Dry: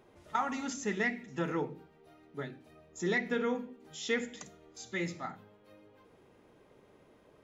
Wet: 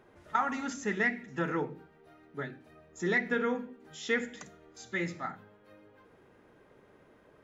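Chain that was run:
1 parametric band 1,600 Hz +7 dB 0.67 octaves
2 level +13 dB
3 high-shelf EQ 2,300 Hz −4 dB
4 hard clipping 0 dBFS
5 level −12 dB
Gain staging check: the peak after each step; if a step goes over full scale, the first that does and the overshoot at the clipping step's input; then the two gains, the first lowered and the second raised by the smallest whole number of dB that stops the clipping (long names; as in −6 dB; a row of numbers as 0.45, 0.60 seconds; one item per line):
−16.5, −3.5, −4.5, −4.5, −16.5 dBFS
no step passes full scale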